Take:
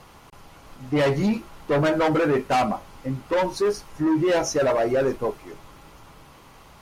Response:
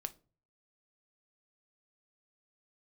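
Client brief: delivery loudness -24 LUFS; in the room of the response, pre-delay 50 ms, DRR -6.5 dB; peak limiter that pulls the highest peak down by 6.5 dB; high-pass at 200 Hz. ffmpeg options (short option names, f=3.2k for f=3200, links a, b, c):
-filter_complex "[0:a]highpass=200,alimiter=limit=-19dB:level=0:latency=1,asplit=2[a][b];[1:a]atrim=start_sample=2205,adelay=50[c];[b][c]afir=irnorm=-1:irlink=0,volume=8.5dB[d];[a][d]amix=inputs=2:normalize=0,volume=-3.5dB"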